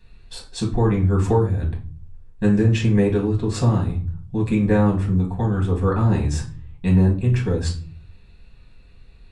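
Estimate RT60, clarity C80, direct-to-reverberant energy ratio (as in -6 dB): no single decay rate, 15.5 dB, -3.0 dB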